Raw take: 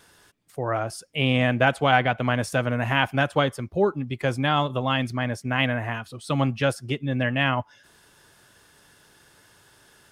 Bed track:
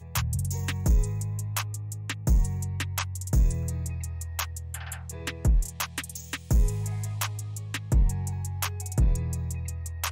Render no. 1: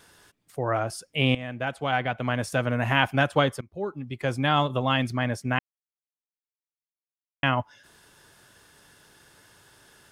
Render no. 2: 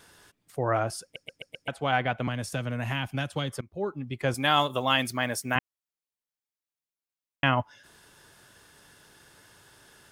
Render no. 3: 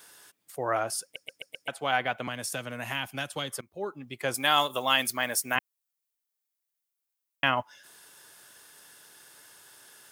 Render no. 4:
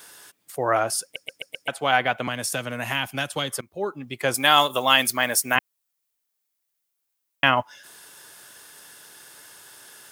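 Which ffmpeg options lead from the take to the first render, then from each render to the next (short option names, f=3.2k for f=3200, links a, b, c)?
-filter_complex "[0:a]asplit=5[a][b][c][d][e];[a]atrim=end=1.35,asetpts=PTS-STARTPTS,afade=t=out:st=1.346:d=0.004:c=hsin:silence=0.149624[f];[b]atrim=start=1.35:end=3.61,asetpts=PTS-STARTPTS,afade=t=in:d=1.55:silence=0.149624,afade=t=out:st=2.256:d=0.004:c=hsin:silence=0.105925[g];[c]atrim=start=3.61:end=5.59,asetpts=PTS-STARTPTS,afade=t=in:d=0.94:silence=0.105925,afade=t=out:st=1.976:d=0.004:c=hsin[h];[d]atrim=start=5.59:end=7.43,asetpts=PTS-STARTPTS,volume=0[i];[e]atrim=start=7.43,asetpts=PTS-STARTPTS,afade=t=in:d=0.004:c=hsin[j];[f][g][h][i][j]concat=n=5:v=0:a=1"
-filter_complex "[0:a]asettb=1/sr,asplit=3[a][b][c];[a]atrim=end=2.274[d];[b]atrim=start=2.27:end=3.53,asetpts=PTS-STARTPTS,afade=t=in:d=0.004:c=qsin,afade=t=out:st=1.256:d=0.004:c=qsin,acrossover=split=250|2900[e][f][g];[e]acompressor=threshold=-31dB:ratio=4[h];[f]acompressor=threshold=-35dB:ratio=4[i];[g]acompressor=threshold=-35dB:ratio=4[j];[h][i][j]amix=inputs=3:normalize=0[k];[c]atrim=start=3.526[l];[d][k]acrossfade=d=0.004:c1=hsin:c2=qsin[m];[m][l]acrossfade=d=0.004:c1=qsin:c2=hsin,asettb=1/sr,asplit=3[n][o][p];[n]atrim=end=4.344[q];[o]atrim=start=4.34:end=5.56,asetpts=PTS-STARTPTS,afade=t=in:d=0.004:c=qsin,afade=t=out:st=1.216:d=0.004:c=qsin,aemphasis=mode=production:type=bsi[r];[p]atrim=start=5.556[s];[q][r]acrossfade=d=0.004:c1=hsin:c2=qsin[t];[t][s]acrossfade=d=0.004:c1=qsin:c2=hsin,asplit=6[u][v][w][x][y][z];[u]atrim=end=1.162[aa];[v]atrim=start=1.028:end=1.162[ab];[w]atrim=start=1.028:end=1.162[ac];[x]atrim=start=1.028:end=1.162[ad];[y]atrim=start=1.028:end=1.162[ae];[z]atrim=start=1.678[af];[aa][ab]acrossfade=d=0.004:c1=hsin:c2=hsin[ag];[ag][ac]acrossfade=d=0.004:c1=hsin:c2=hsin[ah];[ah][ad]acrossfade=d=0.004:c1=hsin:c2=hsin[ai];[ai][ae]acrossfade=d=0.004:c1=hsin:c2=hsin[aj];[aj][af]acrossfade=d=0.004:c1=hsin:c2=hsin"
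-af "highpass=f=470:p=1,highshelf=f=8.2k:g=12"
-af "volume=6.5dB"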